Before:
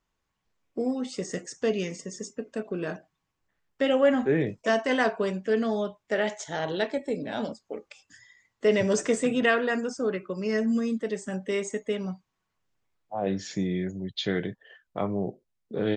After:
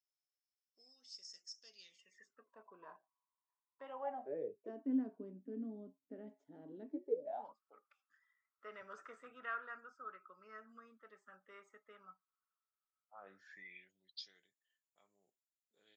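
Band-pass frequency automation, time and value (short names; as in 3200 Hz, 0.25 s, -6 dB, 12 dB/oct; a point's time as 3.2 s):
band-pass, Q 17
1.73 s 5300 Hz
2.49 s 1000 Hz
3.93 s 1000 Hz
4.88 s 270 Hz
6.88 s 270 Hz
7.63 s 1300 Hz
13.37 s 1300 Hz
14.43 s 7100 Hz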